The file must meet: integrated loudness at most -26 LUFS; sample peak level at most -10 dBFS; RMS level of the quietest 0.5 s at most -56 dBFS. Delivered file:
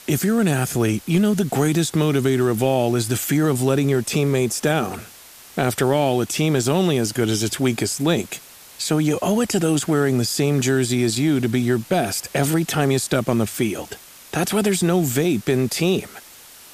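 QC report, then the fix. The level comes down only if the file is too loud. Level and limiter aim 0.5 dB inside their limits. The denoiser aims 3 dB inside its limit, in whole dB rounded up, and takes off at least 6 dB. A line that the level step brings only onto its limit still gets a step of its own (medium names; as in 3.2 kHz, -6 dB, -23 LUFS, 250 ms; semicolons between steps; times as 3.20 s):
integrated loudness -20.0 LUFS: fail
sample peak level -5.0 dBFS: fail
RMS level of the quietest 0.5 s -44 dBFS: fail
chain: noise reduction 9 dB, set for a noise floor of -44 dBFS; trim -6.5 dB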